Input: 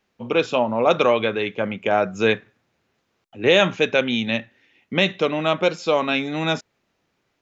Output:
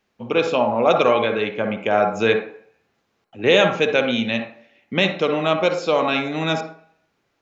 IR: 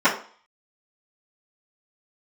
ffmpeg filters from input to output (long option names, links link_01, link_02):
-filter_complex "[0:a]asplit=2[link_01][link_02];[link_02]highpass=frequency=250:poles=1[link_03];[1:a]atrim=start_sample=2205,asetrate=33957,aresample=44100,adelay=51[link_04];[link_03][link_04]afir=irnorm=-1:irlink=0,volume=-26.5dB[link_05];[link_01][link_05]amix=inputs=2:normalize=0"